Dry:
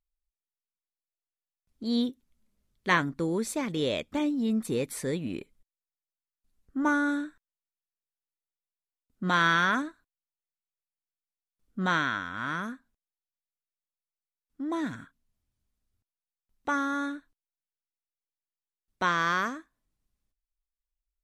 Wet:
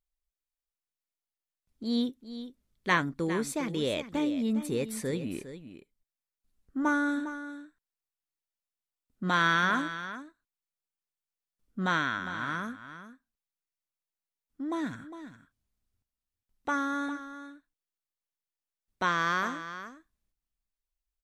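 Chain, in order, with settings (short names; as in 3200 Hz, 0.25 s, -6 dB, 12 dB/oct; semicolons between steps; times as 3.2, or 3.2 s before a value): echo 0.406 s -12 dB; gain -1.5 dB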